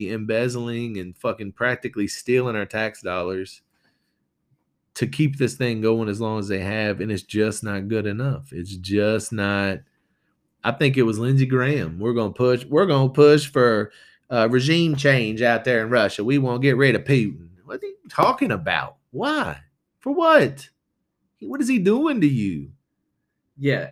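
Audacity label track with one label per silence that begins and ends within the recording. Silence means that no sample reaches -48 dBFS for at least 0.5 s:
3.580000	4.960000	silence
9.820000	10.630000	silence
20.690000	21.420000	silence
22.740000	23.580000	silence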